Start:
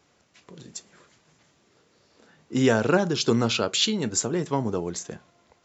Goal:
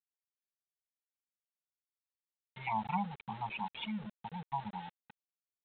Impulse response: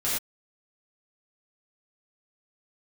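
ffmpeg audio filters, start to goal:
-filter_complex "[0:a]aeval=exprs='if(lt(val(0),0),0.251*val(0),val(0))':c=same,afftfilt=real='re*(1-between(b*sr/4096,220,590))':imag='im*(1-between(b*sr/4096,220,590))':win_size=4096:overlap=0.75,acrossover=split=130|2100[a][b][c];[a]alimiter=level_in=5.5dB:limit=-24dB:level=0:latency=1:release=30,volume=-5.5dB[d];[d][b][c]amix=inputs=3:normalize=0,asplit=3[e][f][g];[e]bandpass=f=300:t=q:w=8,volume=0dB[h];[f]bandpass=f=870:t=q:w=8,volume=-6dB[i];[g]bandpass=f=2.24k:t=q:w=8,volume=-9dB[j];[h][i][j]amix=inputs=3:normalize=0,afftfilt=real='re*gte(hypot(re,im),0.01)':imag='im*gte(hypot(re,im),0.01)':win_size=1024:overlap=0.75,aresample=8000,aeval=exprs='val(0)*gte(abs(val(0)),0.002)':c=same,aresample=44100,volume=8dB"

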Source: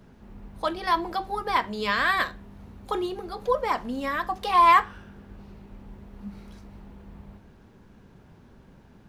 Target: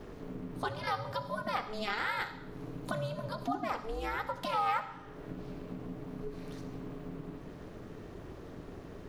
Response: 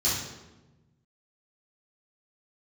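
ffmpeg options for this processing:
-filter_complex "[0:a]aeval=exprs='val(0)*sin(2*PI*220*n/s)':c=same,acompressor=threshold=-48dB:ratio=2.5,asplit=2[a][b];[1:a]atrim=start_sample=2205,adelay=63[c];[b][c]afir=irnorm=-1:irlink=0,volume=-23dB[d];[a][d]amix=inputs=2:normalize=0,volume=8.5dB"

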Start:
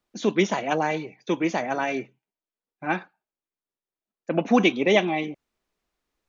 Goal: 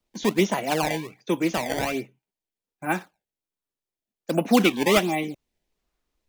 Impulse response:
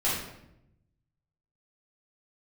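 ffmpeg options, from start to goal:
-filter_complex "[0:a]lowshelf=f=88:g=8,acrossover=split=290|1600[a][b][c];[b]acrusher=samples=19:mix=1:aa=0.000001:lfo=1:lforange=30.4:lforate=1.3[d];[a][d][c]amix=inputs=3:normalize=0"

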